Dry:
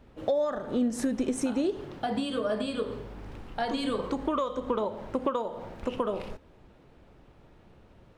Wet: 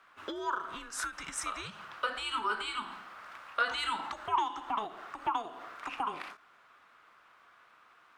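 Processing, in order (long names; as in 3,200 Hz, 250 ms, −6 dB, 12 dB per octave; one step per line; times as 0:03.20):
high-pass with resonance 1,500 Hz, resonance Q 3.8
frequency shifter −220 Hz
every ending faded ahead of time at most 220 dB per second
level +1 dB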